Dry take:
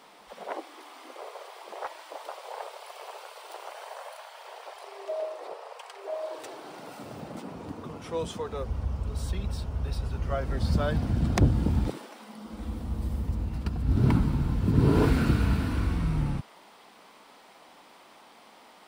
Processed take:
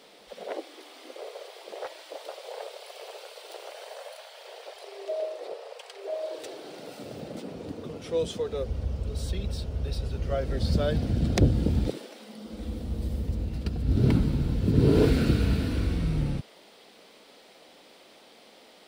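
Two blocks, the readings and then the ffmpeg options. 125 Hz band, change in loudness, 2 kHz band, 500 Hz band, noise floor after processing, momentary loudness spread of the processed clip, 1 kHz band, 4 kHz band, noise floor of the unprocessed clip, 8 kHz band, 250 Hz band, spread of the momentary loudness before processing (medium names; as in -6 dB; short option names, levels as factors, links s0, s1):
0.0 dB, +0.5 dB, -1.5 dB, +3.5 dB, -54 dBFS, 20 LU, -5.0 dB, +3.5 dB, -54 dBFS, +1.0 dB, +1.0 dB, 20 LU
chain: -af "equalizer=f=500:t=o:w=1:g=7,equalizer=f=1000:t=o:w=1:g=-10,equalizer=f=4000:t=o:w=1:g=5"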